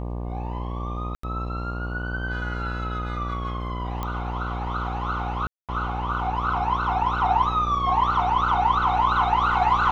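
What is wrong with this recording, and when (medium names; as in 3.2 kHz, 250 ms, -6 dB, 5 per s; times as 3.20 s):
buzz 60 Hz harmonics 20 -30 dBFS
1.15–1.23 s: dropout 84 ms
4.03 s: pop -16 dBFS
5.47–5.69 s: dropout 217 ms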